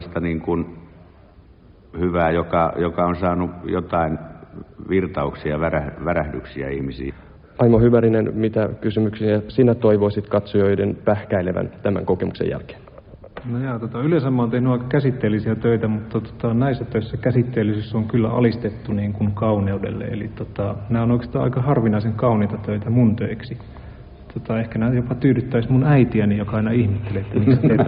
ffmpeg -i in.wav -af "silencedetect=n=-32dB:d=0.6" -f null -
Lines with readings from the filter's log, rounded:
silence_start: 0.83
silence_end: 1.94 | silence_duration: 1.11